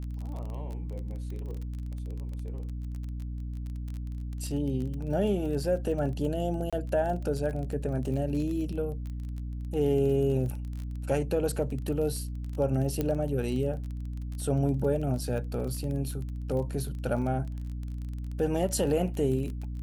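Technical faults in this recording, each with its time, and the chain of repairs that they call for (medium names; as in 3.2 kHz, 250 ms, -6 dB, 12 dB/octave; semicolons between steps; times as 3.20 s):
crackle 25 per s -35 dBFS
hum 60 Hz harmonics 5 -35 dBFS
6.70–6.73 s: dropout 26 ms
13.01 s: pop -16 dBFS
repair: de-click; de-hum 60 Hz, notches 5; interpolate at 6.70 s, 26 ms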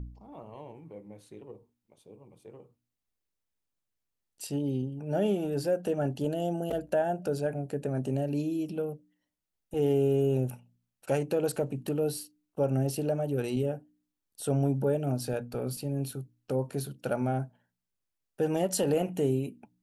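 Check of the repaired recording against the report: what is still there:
nothing left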